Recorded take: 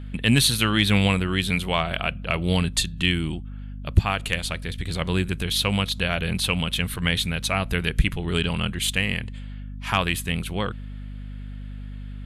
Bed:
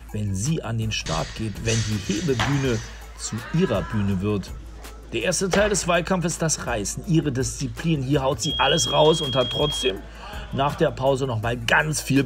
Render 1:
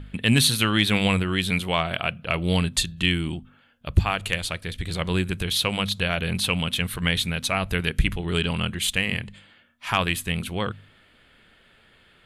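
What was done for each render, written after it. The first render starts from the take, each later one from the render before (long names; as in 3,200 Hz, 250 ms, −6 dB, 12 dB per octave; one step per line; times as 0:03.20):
hum removal 50 Hz, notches 5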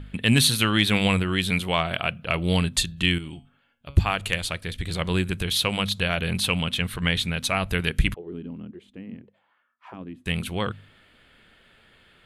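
0:03.18–0:03.97: tuned comb filter 140 Hz, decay 0.33 s, mix 70%
0:06.59–0:07.38: high-shelf EQ 9,000 Hz −9 dB
0:08.14–0:10.26: envelope filter 260–1,300 Hz, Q 4, down, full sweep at −22 dBFS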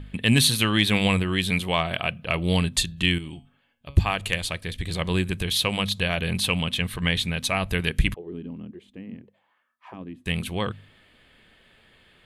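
notch filter 1,400 Hz, Q 8.2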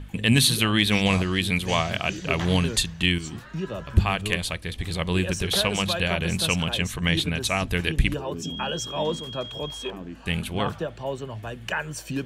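mix in bed −10 dB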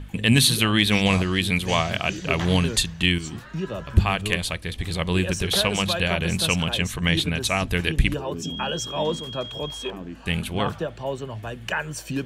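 level +1.5 dB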